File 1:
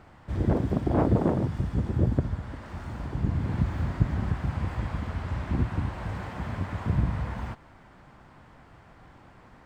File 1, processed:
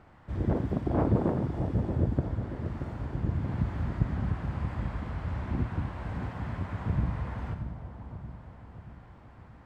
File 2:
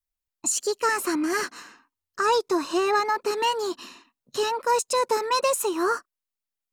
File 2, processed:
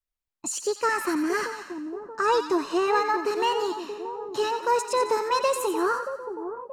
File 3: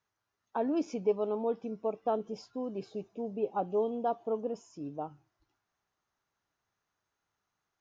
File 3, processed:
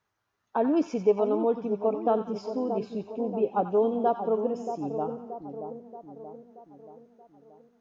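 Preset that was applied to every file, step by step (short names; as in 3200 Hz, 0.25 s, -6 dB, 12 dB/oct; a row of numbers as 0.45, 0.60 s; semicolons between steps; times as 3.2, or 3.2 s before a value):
high shelf 3900 Hz -7.5 dB; split-band echo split 980 Hz, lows 0.629 s, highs 89 ms, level -8.5 dB; normalise peaks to -12 dBFS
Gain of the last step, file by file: -3.5, -0.5, +6.5 dB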